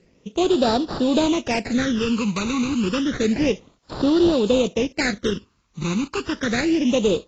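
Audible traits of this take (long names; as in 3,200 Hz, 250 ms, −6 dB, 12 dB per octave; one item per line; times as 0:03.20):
aliases and images of a low sample rate 3,200 Hz, jitter 20%
phaser sweep stages 12, 0.3 Hz, lowest notch 550–2,200 Hz
a quantiser's noise floor 12 bits, dither triangular
AAC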